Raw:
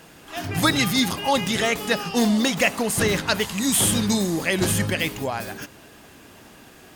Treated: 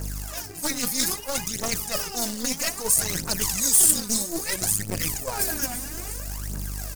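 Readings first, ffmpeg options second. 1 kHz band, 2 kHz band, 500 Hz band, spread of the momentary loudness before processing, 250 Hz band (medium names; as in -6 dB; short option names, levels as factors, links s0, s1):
-8.5 dB, -9.5 dB, -9.0 dB, 11 LU, -10.5 dB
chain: -filter_complex "[0:a]highpass=f=63:w=0.5412,highpass=f=63:w=1.3066,asplit=6[s0][s1][s2][s3][s4][s5];[s1]adelay=351,afreqshift=-71,volume=0.119[s6];[s2]adelay=702,afreqshift=-142,volume=0.0716[s7];[s3]adelay=1053,afreqshift=-213,volume=0.0427[s8];[s4]adelay=1404,afreqshift=-284,volume=0.0257[s9];[s5]adelay=1755,afreqshift=-355,volume=0.0155[s10];[s0][s6][s7][s8][s9][s10]amix=inputs=6:normalize=0,aeval=exprs='val(0)+0.0112*(sin(2*PI*50*n/s)+sin(2*PI*2*50*n/s)/2+sin(2*PI*3*50*n/s)/3+sin(2*PI*4*50*n/s)/4+sin(2*PI*5*50*n/s)/5)':c=same,aphaser=in_gain=1:out_gain=1:delay=4.2:decay=0.74:speed=0.61:type=triangular,asplit=2[s11][s12];[s12]acrusher=bits=2:mode=log:mix=0:aa=0.000001,volume=0.668[s13];[s11][s13]amix=inputs=2:normalize=0,highshelf=f=4700:g=-9,aeval=exprs='1.78*(cos(1*acos(clip(val(0)/1.78,-1,1)))-cos(1*PI/2))+0.708*(cos(4*acos(clip(val(0)/1.78,-1,1)))-cos(4*PI/2))':c=same,areverse,acompressor=threshold=0.0562:ratio=6,areverse,aexciter=amount=7.8:drive=5.2:freq=4800,volume=0.708"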